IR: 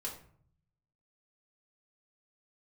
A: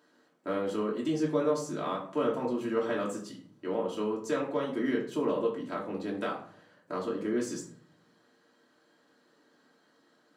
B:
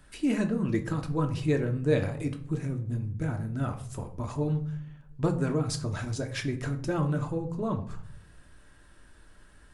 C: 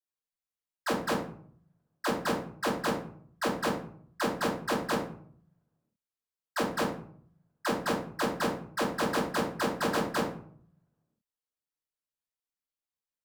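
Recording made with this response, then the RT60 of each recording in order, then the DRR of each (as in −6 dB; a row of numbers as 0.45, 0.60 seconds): A; 0.55, 0.60, 0.55 seconds; −4.0, 4.5, −12.5 decibels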